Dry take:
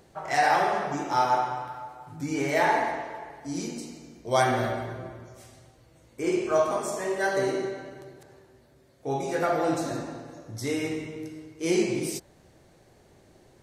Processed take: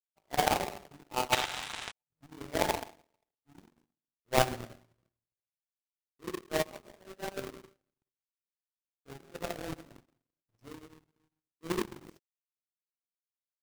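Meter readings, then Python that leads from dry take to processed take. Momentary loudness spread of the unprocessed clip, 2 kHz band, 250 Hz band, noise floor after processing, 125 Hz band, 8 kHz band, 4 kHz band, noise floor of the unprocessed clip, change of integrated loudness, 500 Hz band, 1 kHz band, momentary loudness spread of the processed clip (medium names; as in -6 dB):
17 LU, -8.5 dB, -11.5 dB, under -85 dBFS, -8.0 dB, -4.5 dB, 0.0 dB, -58 dBFS, -6.5 dB, -10.0 dB, -9.5 dB, 22 LU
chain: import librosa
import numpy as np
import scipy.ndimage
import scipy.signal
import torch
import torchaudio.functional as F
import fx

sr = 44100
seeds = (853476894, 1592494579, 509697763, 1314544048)

y = fx.halfwave_hold(x, sr)
y = fx.spec_paint(y, sr, seeds[0], shape='noise', start_s=1.32, length_s=0.6, low_hz=670.0, high_hz=4000.0, level_db=-24.0)
y = fx.power_curve(y, sr, exponent=3.0)
y = y * 10.0 ** (1.0 / 20.0)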